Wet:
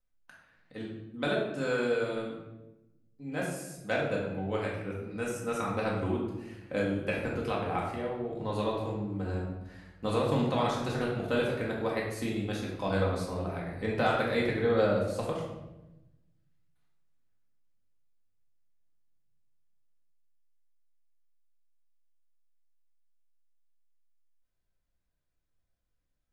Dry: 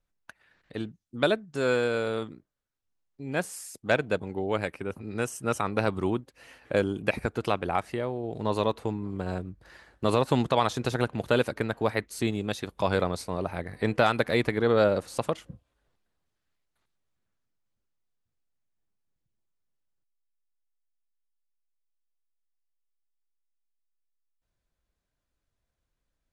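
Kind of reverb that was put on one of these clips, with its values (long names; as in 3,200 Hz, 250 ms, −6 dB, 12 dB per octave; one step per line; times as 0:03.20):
rectangular room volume 400 cubic metres, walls mixed, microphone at 2 metres
level −9.5 dB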